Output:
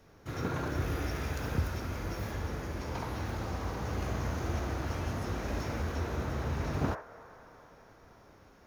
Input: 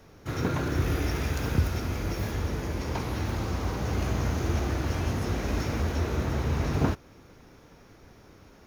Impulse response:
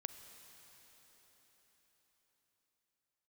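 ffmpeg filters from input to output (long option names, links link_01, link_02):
-filter_complex "[0:a]asplit=2[link_01][link_02];[link_02]asuperpass=centerf=960:order=8:qfactor=0.68[link_03];[1:a]atrim=start_sample=2205,adelay=69[link_04];[link_03][link_04]afir=irnorm=-1:irlink=0,volume=3.5dB[link_05];[link_01][link_05]amix=inputs=2:normalize=0,volume=-6.5dB"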